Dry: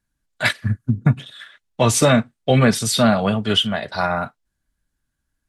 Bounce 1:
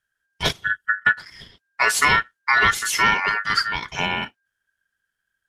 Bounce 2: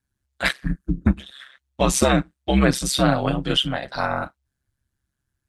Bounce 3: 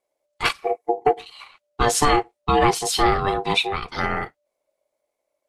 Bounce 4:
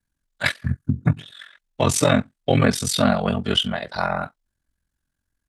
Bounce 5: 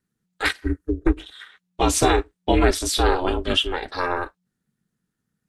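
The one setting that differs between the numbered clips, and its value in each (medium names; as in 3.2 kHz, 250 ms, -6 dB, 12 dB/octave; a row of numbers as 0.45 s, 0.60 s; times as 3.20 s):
ring modulator, frequency: 1.6 kHz, 67 Hz, 590 Hz, 22 Hz, 180 Hz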